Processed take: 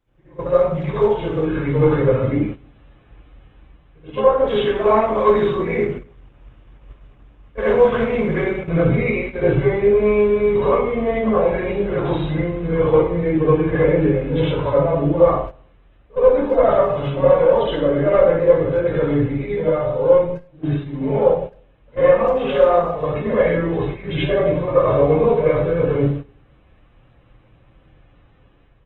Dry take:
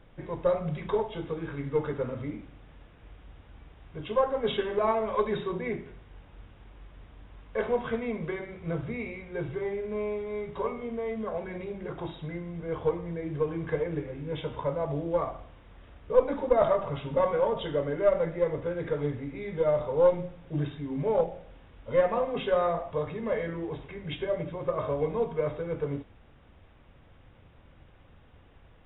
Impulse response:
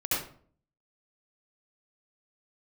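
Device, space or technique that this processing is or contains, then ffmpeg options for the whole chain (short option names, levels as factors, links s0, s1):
speakerphone in a meeting room: -filter_complex "[0:a]asplit=3[s0][s1][s2];[s0]afade=t=out:st=21.22:d=0.02[s3];[s1]bandreject=f=60:t=h:w=6,bandreject=f=120:t=h:w=6,bandreject=f=180:t=h:w=6,afade=t=in:st=21.22:d=0.02,afade=t=out:st=22.88:d=0.02[s4];[s2]afade=t=in:st=22.88:d=0.02[s5];[s3][s4][s5]amix=inputs=3:normalize=0[s6];[1:a]atrim=start_sample=2205[s7];[s6][s7]afir=irnorm=-1:irlink=0,asplit=2[s8][s9];[s9]adelay=260,highpass=300,lowpass=3400,asoftclip=type=hard:threshold=0.299,volume=0.0708[s10];[s8][s10]amix=inputs=2:normalize=0,dynaudnorm=f=120:g=9:m=2.99,agate=range=0.2:threshold=0.0708:ratio=16:detection=peak,volume=0.841" -ar 48000 -c:a libopus -b:a 16k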